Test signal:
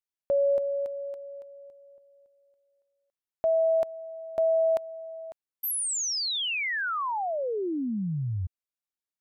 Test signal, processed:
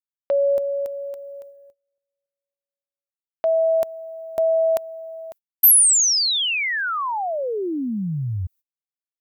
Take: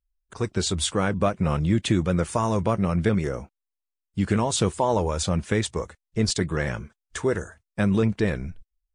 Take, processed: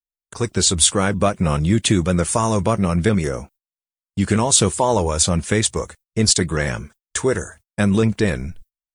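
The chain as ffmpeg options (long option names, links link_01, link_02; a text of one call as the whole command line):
ffmpeg -i in.wav -af "aemphasis=mode=production:type=50fm,agate=range=-31dB:threshold=-47dB:ratio=16:release=291:detection=peak,volume=5dB" out.wav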